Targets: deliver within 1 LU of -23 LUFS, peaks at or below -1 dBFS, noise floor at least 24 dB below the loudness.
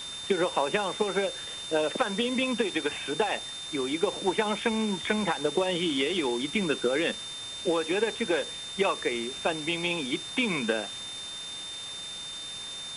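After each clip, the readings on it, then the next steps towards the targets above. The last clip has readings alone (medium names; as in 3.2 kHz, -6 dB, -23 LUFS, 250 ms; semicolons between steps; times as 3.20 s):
steady tone 3.6 kHz; tone level -37 dBFS; noise floor -39 dBFS; noise floor target -53 dBFS; loudness -29.0 LUFS; peak level -12.5 dBFS; loudness target -23.0 LUFS
-> band-stop 3.6 kHz, Q 30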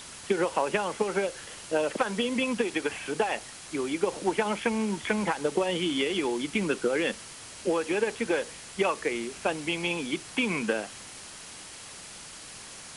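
steady tone not found; noise floor -45 dBFS; noise floor target -53 dBFS
-> noise reduction 8 dB, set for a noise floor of -45 dBFS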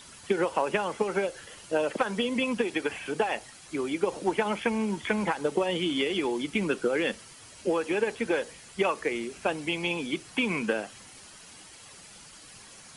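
noise floor -50 dBFS; noise floor target -53 dBFS
-> noise reduction 6 dB, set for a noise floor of -50 dBFS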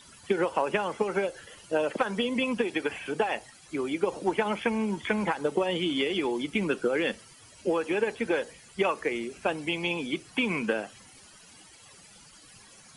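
noise floor -53 dBFS; loudness -29.0 LUFS; peak level -13.0 dBFS; loudness target -23.0 LUFS
-> trim +6 dB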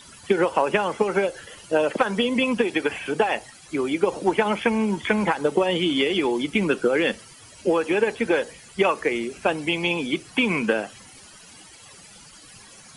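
loudness -23.0 LUFS; peak level -7.0 dBFS; noise floor -47 dBFS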